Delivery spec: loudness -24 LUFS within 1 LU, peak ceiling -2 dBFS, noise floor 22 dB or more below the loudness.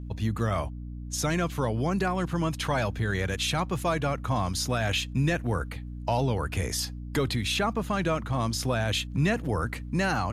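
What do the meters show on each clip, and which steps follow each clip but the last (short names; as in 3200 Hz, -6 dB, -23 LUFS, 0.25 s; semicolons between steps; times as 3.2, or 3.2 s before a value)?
hum 60 Hz; harmonics up to 300 Hz; hum level -35 dBFS; loudness -28.5 LUFS; peak -14.5 dBFS; loudness target -24.0 LUFS
-> de-hum 60 Hz, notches 5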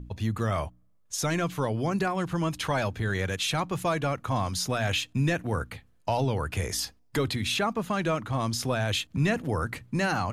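hum none; loudness -28.5 LUFS; peak -14.0 dBFS; loudness target -24.0 LUFS
-> gain +4.5 dB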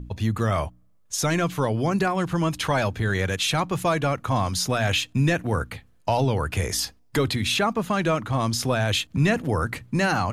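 loudness -24.0 LUFS; peak -9.5 dBFS; noise floor -57 dBFS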